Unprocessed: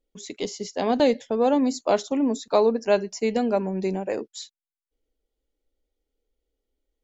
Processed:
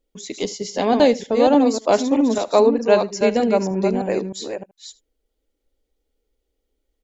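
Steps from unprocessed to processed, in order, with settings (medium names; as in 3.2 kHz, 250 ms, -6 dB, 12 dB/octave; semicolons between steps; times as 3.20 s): chunks repeated in reverse 309 ms, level -5.5 dB; on a send: delay 77 ms -21 dB; 2.38–3.21 s: on the sum: three bands expanded up and down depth 40%; trim +4.5 dB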